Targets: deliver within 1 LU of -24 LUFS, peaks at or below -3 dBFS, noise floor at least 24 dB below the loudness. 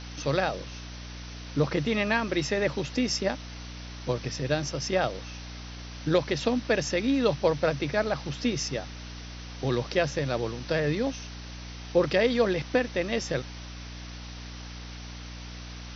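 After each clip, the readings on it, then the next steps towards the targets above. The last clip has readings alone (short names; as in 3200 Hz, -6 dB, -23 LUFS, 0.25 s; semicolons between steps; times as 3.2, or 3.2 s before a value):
hum 60 Hz; harmonics up to 300 Hz; hum level -39 dBFS; noise floor -41 dBFS; noise floor target -52 dBFS; loudness -28.0 LUFS; peak -10.5 dBFS; loudness target -24.0 LUFS
-> notches 60/120/180/240/300 Hz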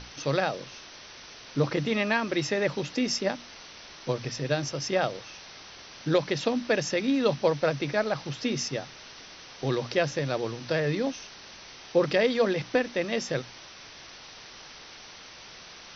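hum none; noise floor -47 dBFS; noise floor target -52 dBFS
-> denoiser 6 dB, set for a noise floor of -47 dBFS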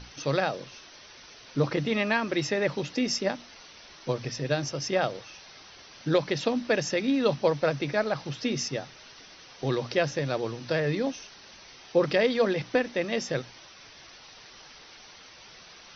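noise floor -50 dBFS; noise floor target -52 dBFS
-> denoiser 6 dB, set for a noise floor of -50 dBFS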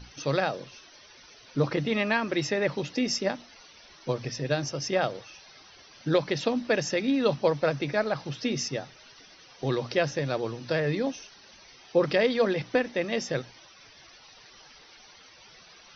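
noise floor -53 dBFS; loudness -28.0 LUFS; peak -11.0 dBFS; loudness target -24.0 LUFS
-> gain +4 dB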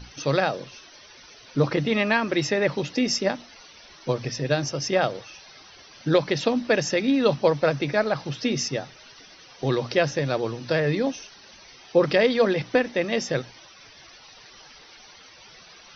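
loudness -24.0 LUFS; peak -7.0 dBFS; noise floor -49 dBFS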